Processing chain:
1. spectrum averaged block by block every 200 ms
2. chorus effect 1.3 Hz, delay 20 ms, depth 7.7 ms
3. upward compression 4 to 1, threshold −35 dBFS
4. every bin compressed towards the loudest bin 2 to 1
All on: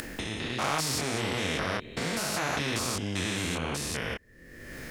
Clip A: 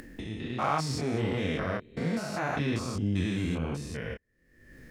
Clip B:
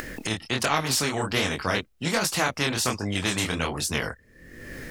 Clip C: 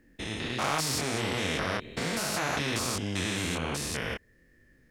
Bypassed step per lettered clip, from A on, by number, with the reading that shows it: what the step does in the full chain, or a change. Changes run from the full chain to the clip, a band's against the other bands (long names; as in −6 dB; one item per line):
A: 4, 8 kHz band −11.5 dB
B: 1, change in crest factor +2.5 dB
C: 3, change in momentary loudness spread −2 LU